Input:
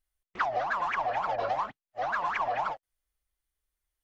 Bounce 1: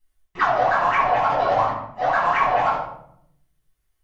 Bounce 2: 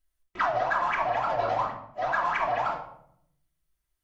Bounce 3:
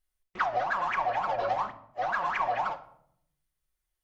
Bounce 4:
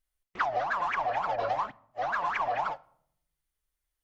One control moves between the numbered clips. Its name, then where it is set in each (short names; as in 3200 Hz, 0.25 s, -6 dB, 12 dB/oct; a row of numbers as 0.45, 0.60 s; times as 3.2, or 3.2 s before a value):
shoebox room, microphone at: 9.8, 2.9, 1, 0.32 m